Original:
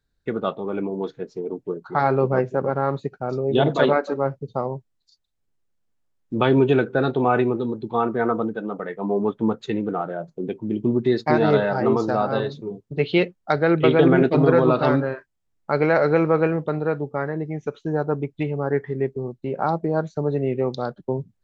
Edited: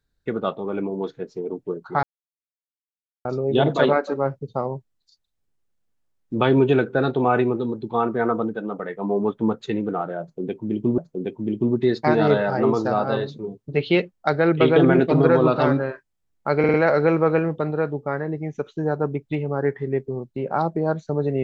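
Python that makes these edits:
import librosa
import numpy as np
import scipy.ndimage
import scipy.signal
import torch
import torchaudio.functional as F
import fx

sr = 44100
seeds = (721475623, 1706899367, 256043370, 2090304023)

y = fx.edit(x, sr, fx.silence(start_s=2.03, length_s=1.22),
    fx.repeat(start_s=10.21, length_s=0.77, count=2),
    fx.stutter(start_s=15.82, slice_s=0.05, count=4), tone=tone)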